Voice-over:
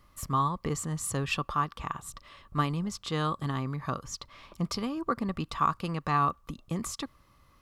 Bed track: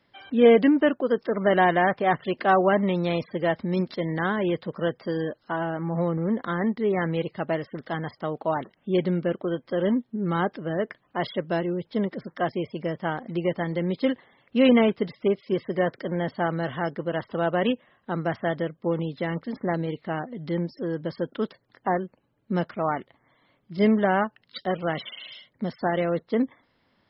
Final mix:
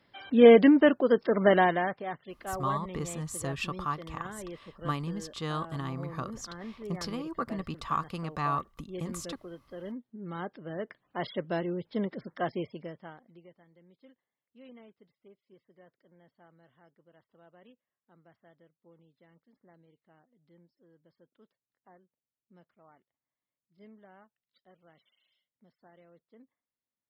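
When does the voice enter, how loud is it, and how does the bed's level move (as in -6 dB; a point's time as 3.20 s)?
2.30 s, -4.0 dB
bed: 1.48 s 0 dB
2.20 s -17 dB
9.85 s -17 dB
11.35 s -5.5 dB
12.62 s -5.5 dB
13.64 s -34 dB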